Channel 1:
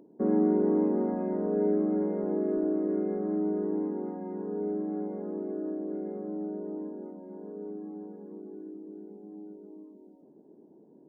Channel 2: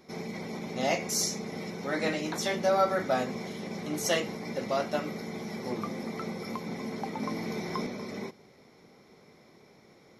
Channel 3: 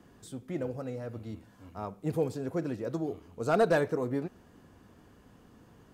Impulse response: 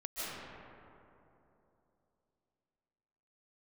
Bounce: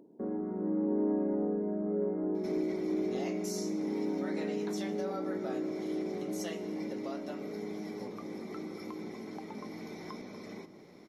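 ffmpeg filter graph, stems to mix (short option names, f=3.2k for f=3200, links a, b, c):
-filter_complex "[0:a]volume=-3dB,asplit=2[a][b];[b]volume=-14dB[c];[1:a]acompressor=threshold=-44dB:ratio=2.5,adelay=2350,volume=-2.5dB,asplit=2[d][e];[e]volume=-17dB[f];[a]alimiter=level_in=7dB:limit=-24dB:level=0:latency=1:release=31,volume=-7dB,volume=0dB[g];[3:a]atrim=start_sample=2205[h];[c][f]amix=inputs=2:normalize=0[i];[i][h]afir=irnorm=-1:irlink=0[j];[d][g][j]amix=inputs=3:normalize=0"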